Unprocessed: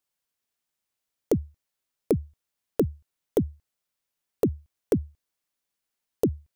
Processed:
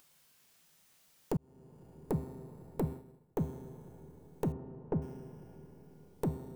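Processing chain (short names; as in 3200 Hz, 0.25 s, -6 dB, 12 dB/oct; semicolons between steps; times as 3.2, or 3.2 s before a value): one diode to ground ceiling -28.5 dBFS; resonator 130 Hz, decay 1.7 s, mix 80%; Schroeder reverb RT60 2.4 s, combs from 26 ms, DRR 10.5 dB; upward compressor, threshold -50 dBFS; bell 160 Hz +12.5 dB 0.38 oct; de-hum 131.7 Hz, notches 32; 1.37–2.12 fade in; 2.83–3.38 expander -43 dBFS; 4.52–5.02 LPF 1400 Hz 12 dB/oct; gain +4.5 dB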